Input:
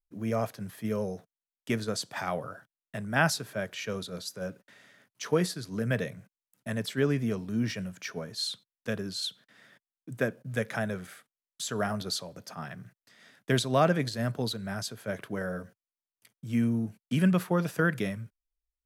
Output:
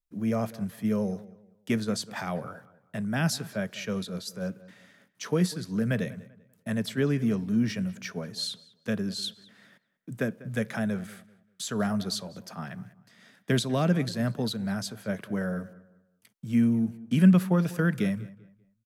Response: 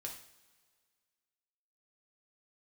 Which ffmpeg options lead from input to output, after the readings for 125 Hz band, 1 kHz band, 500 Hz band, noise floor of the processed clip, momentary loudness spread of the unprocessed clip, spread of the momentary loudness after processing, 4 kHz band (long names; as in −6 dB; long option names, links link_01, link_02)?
+3.5 dB, −3.5 dB, −1.0 dB, −70 dBFS, 15 LU, 15 LU, 0.0 dB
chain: -filter_complex "[0:a]equalizer=frequency=200:width_type=o:width=0.57:gain=7.5,acrossover=split=390|2600[link_01][link_02][link_03];[link_02]alimiter=limit=-23dB:level=0:latency=1:release=187[link_04];[link_01][link_04][link_03]amix=inputs=3:normalize=0,asplit=2[link_05][link_06];[link_06]adelay=195,lowpass=frequency=2900:poles=1,volume=-18.5dB,asplit=2[link_07][link_08];[link_08]adelay=195,lowpass=frequency=2900:poles=1,volume=0.3,asplit=2[link_09][link_10];[link_10]adelay=195,lowpass=frequency=2900:poles=1,volume=0.3[link_11];[link_05][link_07][link_09][link_11]amix=inputs=4:normalize=0"